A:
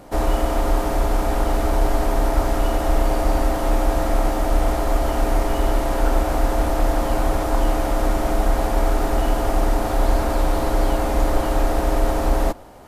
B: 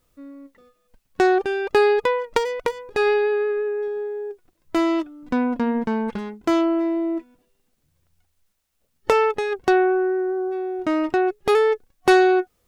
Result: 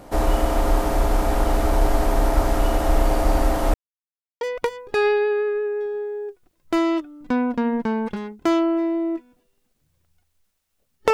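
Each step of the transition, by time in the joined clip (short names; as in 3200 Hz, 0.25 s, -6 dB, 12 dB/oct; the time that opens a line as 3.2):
A
3.74–4.41 mute
4.41 switch to B from 2.43 s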